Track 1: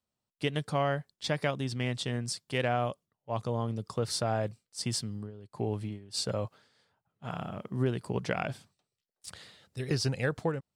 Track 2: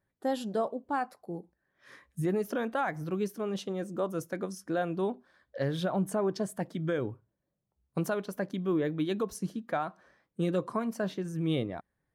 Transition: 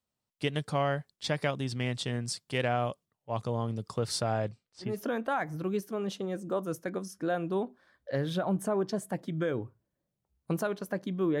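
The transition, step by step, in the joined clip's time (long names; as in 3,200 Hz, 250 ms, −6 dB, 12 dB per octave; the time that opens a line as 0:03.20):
track 1
0:04.33–0:05.00: low-pass filter 10,000 Hz → 1,600 Hz
0:04.90: continue with track 2 from 0:02.37, crossfade 0.20 s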